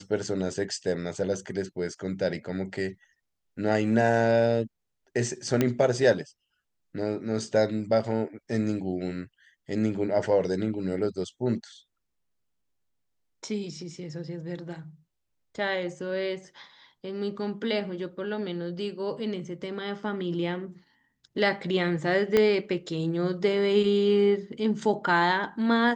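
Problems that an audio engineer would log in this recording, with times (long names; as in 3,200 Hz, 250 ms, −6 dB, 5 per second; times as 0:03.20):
0:05.61: click −10 dBFS
0:22.37: click −10 dBFS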